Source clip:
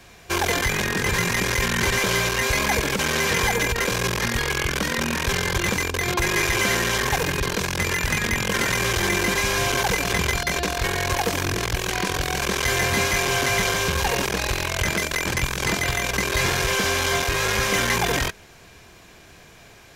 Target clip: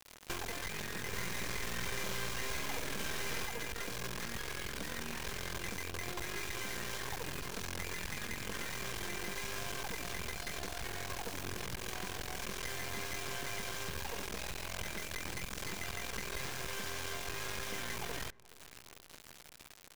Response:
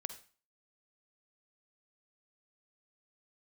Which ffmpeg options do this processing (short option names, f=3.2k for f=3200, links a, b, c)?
-filter_complex "[0:a]acompressor=threshold=-31dB:ratio=10,acrusher=bits=4:dc=4:mix=0:aa=0.000001,asplit=3[a][b][c];[a]afade=t=out:st=1.11:d=0.02[d];[b]asplit=2[e][f];[f]adelay=50,volume=-3dB[g];[e][g]amix=inputs=2:normalize=0,afade=t=in:st=1.11:d=0.02,afade=t=out:st=3.44:d=0.02[h];[c]afade=t=in:st=3.44:d=0.02[i];[d][h][i]amix=inputs=3:normalize=0,asplit=2[j][k];[k]adelay=425,lowpass=f=1.1k:p=1,volume=-22dB,asplit=2[l][m];[m]adelay=425,lowpass=f=1.1k:p=1,volume=0.51,asplit=2[n][o];[o]adelay=425,lowpass=f=1.1k:p=1,volume=0.51,asplit=2[p][q];[q]adelay=425,lowpass=f=1.1k:p=1,volume=0.51[r];[j][l][n][p][r]amix=inputs=5:normalize=0,volume=-3dB"